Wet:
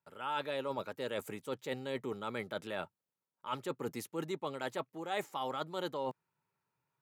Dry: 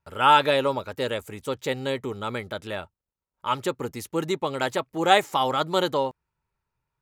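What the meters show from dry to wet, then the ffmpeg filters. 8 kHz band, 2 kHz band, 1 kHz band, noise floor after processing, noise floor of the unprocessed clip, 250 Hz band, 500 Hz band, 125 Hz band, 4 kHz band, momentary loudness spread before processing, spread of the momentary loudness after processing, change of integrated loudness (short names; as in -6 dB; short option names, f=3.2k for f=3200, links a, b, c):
-12.5 dB, -14.5 dB, -16.5 dB, under -85 dBFS, under -85 dBFS, -11.5 dB, -12.5 dB, -13.0 dB, -16.0 dB, 15 LU, 5 LU, -14.5 dB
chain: -af "highpass=f=130:w=0.5412,highpass=f=130:w=1.3066,equalizer=f=5.8k:w=0.63:g=-2.5,areverse,acompressor=threshold=-34dB:ratio=6,areverse,volume=-1dB"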